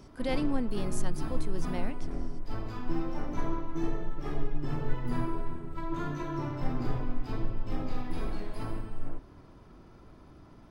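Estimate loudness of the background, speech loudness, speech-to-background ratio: −37.0 LKFS, −36.0 LKFS, 1.0 dB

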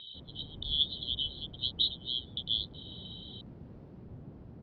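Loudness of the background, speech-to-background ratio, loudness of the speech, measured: −49.5 LKFS, 17.0 dB, −32.5 LKFS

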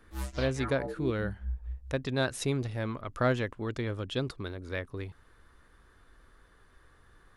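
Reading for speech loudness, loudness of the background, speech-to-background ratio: −33.0 LKFS, −40.0 LKFS, 7.0 dB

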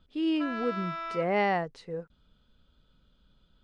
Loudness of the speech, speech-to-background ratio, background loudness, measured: −30.5 LKFS, 6.5 dB, −37.0 LKFS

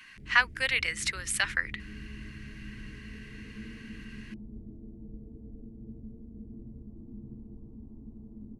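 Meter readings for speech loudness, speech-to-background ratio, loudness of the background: −28.0 LKFS, 19.0 dB, −47.0 LKFS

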